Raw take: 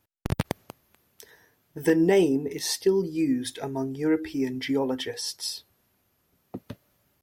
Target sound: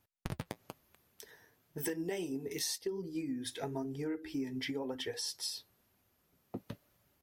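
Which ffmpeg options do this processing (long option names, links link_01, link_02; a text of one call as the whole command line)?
ffmpeg -i in.wav -filter_complex "[0:a]asettb=1/sr,asplit=3[link_01][link_02][link_03];[link_01]atrim=end=1.784[link_04];[link_02]atrim=start=1.78:end=2.78,asetpts=PTS-STARTPTS,afade=type=in:duration=0.004:curve=qsin,afade=type=out:start_time=0.996:duration=0.004:curve=qsin,highshelf=frequency=2400:gain=9.5[link_05];[link_03]atrim=start=2.776[link_06];[link_04][link_05]acrossfade=duration=0.004:curve1=hsin:curve2=qsin[link_07];[link_07][link_06]acrossfade=duration=0.004:curve1=qsin:curve2=hsin,acompressor=threshold=-30dB:ratio=12,flanger=delay=0.8:depth=8.9:regen=-54:speed=1:shape=triangular" out.wav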